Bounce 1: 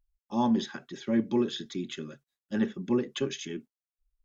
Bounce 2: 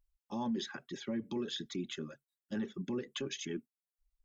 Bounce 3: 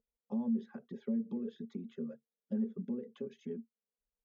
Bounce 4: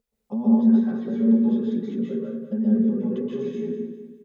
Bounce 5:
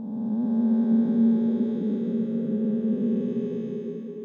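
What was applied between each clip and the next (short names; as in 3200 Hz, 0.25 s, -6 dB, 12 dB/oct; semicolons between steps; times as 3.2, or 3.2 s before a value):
reverb removal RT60 0.51 s; limiter -27.5 dBFS, peak gain reduction 11.5 dB; gain -1.5 dB
compressor, threshold -43 dBFS, peak gain reduction 11 dB; double band-pass 320 Hz, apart 1 oct; gain +14 dB
on a send: feedback echo 0.202 s, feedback 39%, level -11 dB; on the sum: plate-style reverb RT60 0.83 s, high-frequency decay 0.55×, pre-delay 0.115 s, DRR -6 dB; gain +7.5 dB
time blur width 0.887 s; delay with a stepping band-pass 0.272 s, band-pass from 150 Hz, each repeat 1.4 oct, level -2 dB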